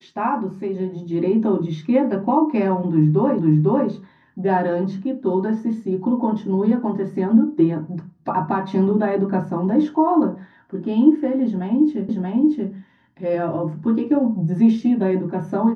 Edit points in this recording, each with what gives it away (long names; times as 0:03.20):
0:03.39: the same again, the last 0.5 s
0:12.09: the same again, the last 0.63 s